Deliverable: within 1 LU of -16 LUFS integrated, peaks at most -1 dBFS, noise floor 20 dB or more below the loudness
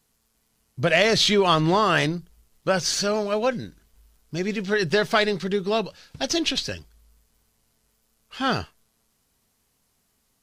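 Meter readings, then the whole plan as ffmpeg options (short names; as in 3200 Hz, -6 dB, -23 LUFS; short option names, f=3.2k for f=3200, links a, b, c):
loudness -22.5 LUFS; peak -5.0 dBFS; loudness target -16.0 LUFS
-> -af "volume=6.5dB,alimiter=limit=-1dB:level=0:latency=1"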